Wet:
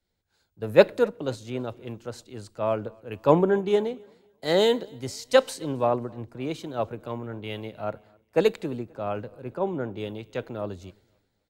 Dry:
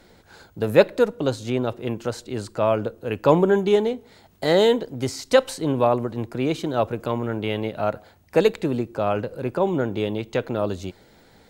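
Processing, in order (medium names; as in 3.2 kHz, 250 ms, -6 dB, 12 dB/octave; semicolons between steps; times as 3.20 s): feedback delay 265 ms, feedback 57%, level -23 dB; three bands expanded up and down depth 70%; trim -6.5 dB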